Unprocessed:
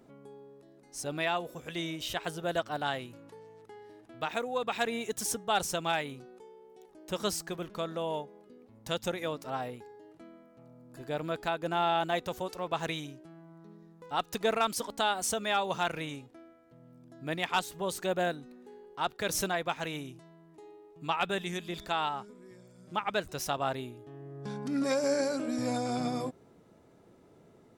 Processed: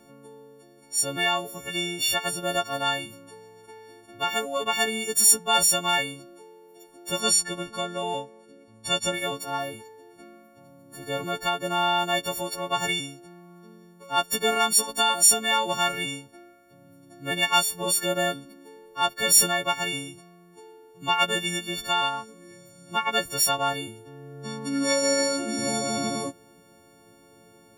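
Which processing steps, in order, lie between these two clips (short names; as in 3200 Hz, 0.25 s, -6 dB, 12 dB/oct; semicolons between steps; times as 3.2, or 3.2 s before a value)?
frequency quantiser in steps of 4 st; 7.2–9.14 LPF 11000 Hz 24 dB/oct; gain +3.5 dB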